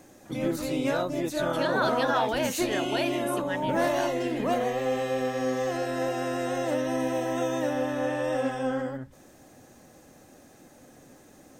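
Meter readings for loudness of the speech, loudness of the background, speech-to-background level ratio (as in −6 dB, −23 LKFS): −31.5 LKFS, −28.5 LKFS, −3.0 dB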